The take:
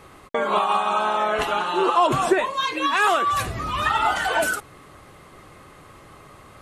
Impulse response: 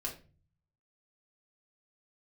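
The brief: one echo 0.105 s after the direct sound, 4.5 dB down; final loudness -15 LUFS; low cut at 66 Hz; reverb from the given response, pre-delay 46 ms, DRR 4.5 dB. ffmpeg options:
-filter_complex "[0:a]highpass=66,aecho=1:1:105:0.596,asplit=2[a][b];[1:a]atrim=start_sample=2205,adelay=46[c];[b][c]afir=irnorm=-1:irlink=0,volume=-5dB[d];[a][d]amix=inputs=2:normalize=0,volume=4dB"

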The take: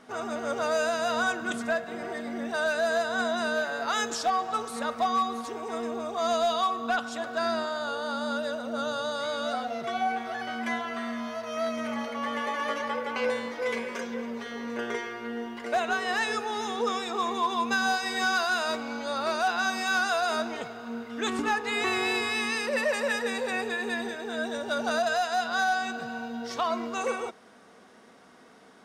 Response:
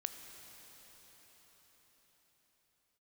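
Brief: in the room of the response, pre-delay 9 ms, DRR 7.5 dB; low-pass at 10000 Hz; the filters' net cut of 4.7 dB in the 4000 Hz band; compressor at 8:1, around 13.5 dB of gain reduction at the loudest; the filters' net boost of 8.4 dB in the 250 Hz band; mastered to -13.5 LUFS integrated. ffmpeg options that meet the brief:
-filter_complex "[0:a]lowpass=10k,equalizer=f=250:t=o:g=9,equalizer=f=4k:t=o:g=-5.5,acompressor=threshold=-33dB:ratio=8,asplit=2[a][b];[1:a]atrim=start_sample=2205,adelay=9[c];[b][c]afir=irnorm=-1:irlink=0,volume=-6.5dB[d];[a][d]amix=inputs=2:normalize=0,volume=21dB"

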